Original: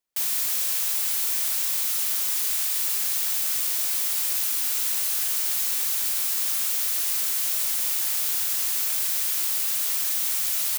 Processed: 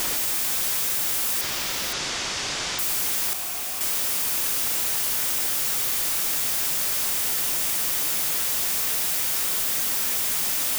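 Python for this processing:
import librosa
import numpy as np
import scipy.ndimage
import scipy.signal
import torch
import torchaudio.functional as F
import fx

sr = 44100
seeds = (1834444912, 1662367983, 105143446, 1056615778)

p1 = np.sign(x) * np.sqrt(np.mean(np.square(x)))
p2 = fx.lowpass(p1, sr, hz=6200.0, slope=24, at=(1.41, 2.79))
p3 = fx.notch(p2, sr, hz=4100.0, q=29.0)
p4 = fx.vowel_filter(p3, sr, vowel='a', at=(3.33, 3.81))
p5 = p4 + fx.echo_single(p4, sr, ms=516, db=-9.5, dry=0)
y = fx.env_flatten(p5, sr, amount_pct=50)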